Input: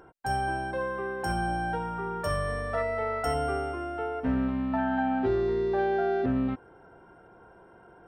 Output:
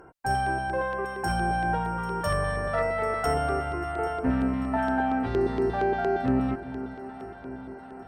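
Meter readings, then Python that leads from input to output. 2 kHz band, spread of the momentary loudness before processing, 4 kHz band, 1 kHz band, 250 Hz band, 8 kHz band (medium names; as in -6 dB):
+3.0 dB, 6 LU, +2.0 dB, +3.5 dB, +1.5 dB, +3.0 dB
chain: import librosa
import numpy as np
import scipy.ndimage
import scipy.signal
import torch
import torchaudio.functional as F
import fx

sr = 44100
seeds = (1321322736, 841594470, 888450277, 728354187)

y = fx.echo_alternate(x, sr, ms=396, hz=960.0, feedback_pct=79, wet_db=-12.5)
y = fx.filter_lfo_notch(y, sr, shape='square', hz=4.3, low_hz=370.0, high_hz=3500.0, q=1.6)
y = fx.cheby_harmonics(y, sr, harmonics=(6,), levels_db=(-34,), full_scale_db=-15.0)
y = y * librosa.db_to_amplitude(3.0)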